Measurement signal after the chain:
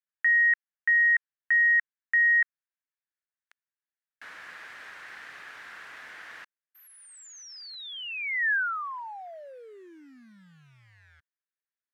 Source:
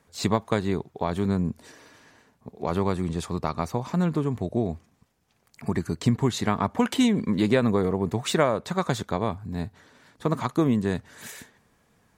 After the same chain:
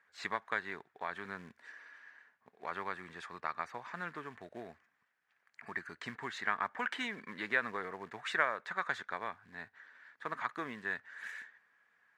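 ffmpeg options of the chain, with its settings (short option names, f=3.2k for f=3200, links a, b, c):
-af "acrusher=bits=7:mode=log:mix=0:aa=0.000001,bandpass=f=1.7k:t=q:w=3.8:csg=0,volume=3.5dB"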